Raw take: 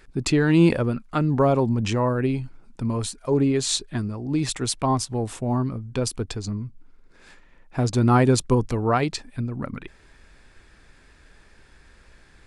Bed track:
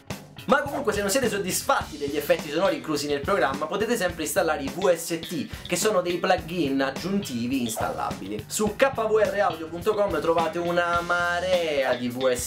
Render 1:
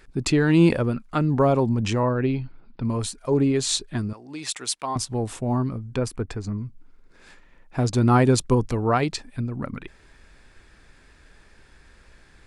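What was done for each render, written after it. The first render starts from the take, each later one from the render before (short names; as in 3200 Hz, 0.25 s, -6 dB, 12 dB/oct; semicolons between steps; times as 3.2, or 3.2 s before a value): 2.03–2.83 steep low-pass 4800 Hz 72 dB/oct; 4.13–4.96 HPF 1200 Hz 6 dB/oct; 5.96–6.58 resonant high shelf 2600 Hz -7 dB, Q 1.5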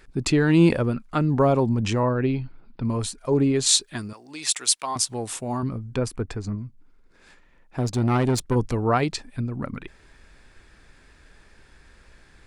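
3.66–5.63 tilt +2.5 dB/oct; 6.55–8.56 tube stage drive 16 dB, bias 0.6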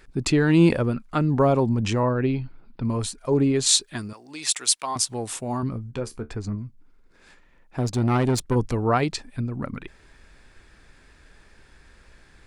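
5.91–6.32 resonator 74 Hz, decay 0.15 s, mix 80%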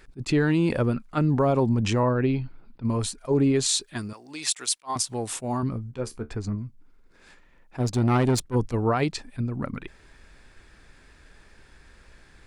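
limiter -13.5 dBFS, peak gain reduction 7.5 dB; attack slew limiter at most 420 dB/s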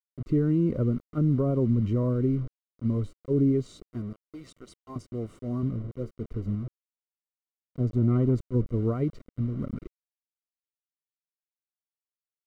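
requantised 6-bit, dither none; running mean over 52 samples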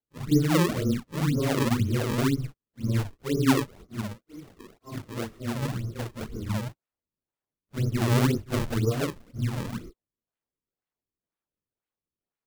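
phase scrambler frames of 0.1 s; decimation with a swept rate 35×, swing 160% 2 Hz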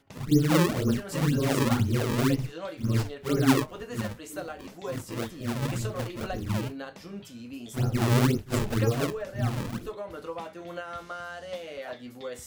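add bed track -14.5 dB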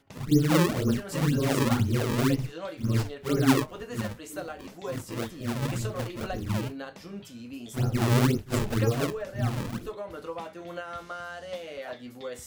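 nothing audible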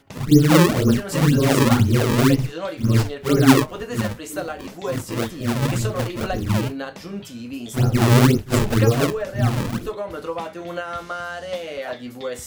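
gain +8.5 dB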